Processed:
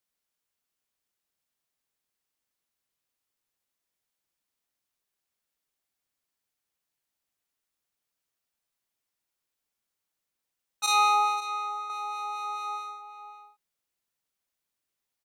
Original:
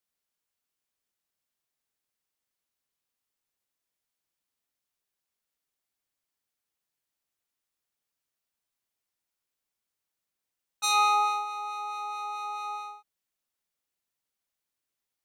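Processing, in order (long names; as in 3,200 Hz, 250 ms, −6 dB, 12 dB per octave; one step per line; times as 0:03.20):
0:10.86–0:11.90: noise gate −29 dBFS, range −9 dB
slap from a distant wall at 93 metres, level −10 dB
level +1 dB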